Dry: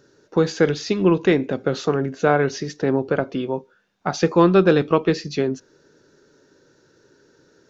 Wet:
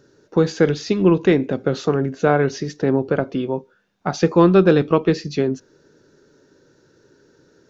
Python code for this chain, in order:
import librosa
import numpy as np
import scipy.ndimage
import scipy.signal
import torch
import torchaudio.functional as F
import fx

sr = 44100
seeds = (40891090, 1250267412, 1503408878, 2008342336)

y = fx.low_shelf(x, sr, hz=460.0, db=4.5)
y = y * 10.0 ** (-1.0 / 20.0)